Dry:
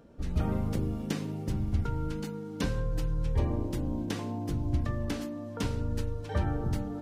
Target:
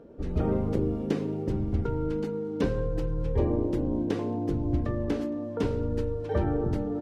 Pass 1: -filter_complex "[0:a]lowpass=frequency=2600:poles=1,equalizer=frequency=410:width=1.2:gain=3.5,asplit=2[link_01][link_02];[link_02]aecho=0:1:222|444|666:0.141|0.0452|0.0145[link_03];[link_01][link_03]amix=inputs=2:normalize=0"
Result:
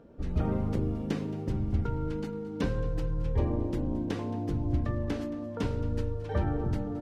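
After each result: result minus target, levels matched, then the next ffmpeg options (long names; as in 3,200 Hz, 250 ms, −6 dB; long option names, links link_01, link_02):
echo-to-direct +10 dB; 500 Hz band −3.5 dB
-filter_complex "[0:a]lowpass=frequency=2600:poles=1,equalizer=frequency=410:width=1.2:gain=3.5,asplit=2[link_01][link_02];[link_02]aecho=0:1:222|444:0.0447|0.0143[link_03];[link_01][link_03]amix=inputs=2:normalize=0"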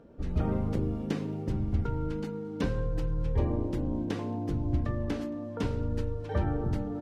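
500 Hz band −3.5 dB
-filter_complex "[0:a]lowpass=frequency=2600:poles=1,equalizer=frequency=410:width=1.2:gain=11,asplit=2[link_01][link_02];[link_02]aecho=0:1:222|444:0.0447|0.0143[link_03];[link_01][link_03]amix=inputs=2:normalize=0"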